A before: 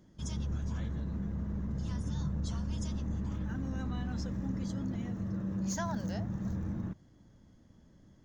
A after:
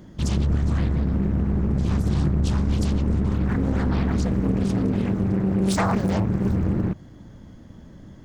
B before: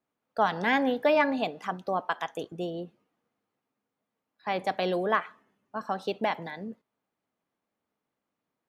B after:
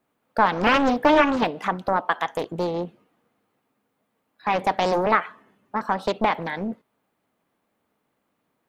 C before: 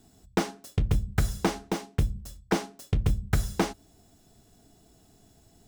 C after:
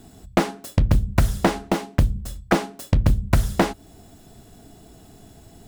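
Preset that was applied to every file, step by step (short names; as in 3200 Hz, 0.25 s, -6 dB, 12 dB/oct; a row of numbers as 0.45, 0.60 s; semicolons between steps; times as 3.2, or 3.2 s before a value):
bell 5800 Hz -5.5 dB 0.98 oct; in parallel at +1 dB: compressor, threshold -36 dBFS; on the sum: Doppler distortion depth 0.86 ms; match loudness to -23 LUFS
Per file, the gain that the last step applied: +9.5, +5.0, +5.5 dB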